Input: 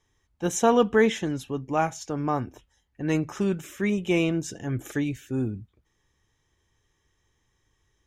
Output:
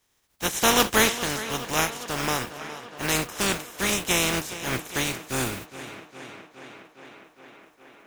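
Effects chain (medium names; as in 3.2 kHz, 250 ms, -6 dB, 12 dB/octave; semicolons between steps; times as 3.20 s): spectral contrast reduction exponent 0.31; on a send: tape echo 412 ms, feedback 81%, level -13 dB, low-pass 5.5 kHz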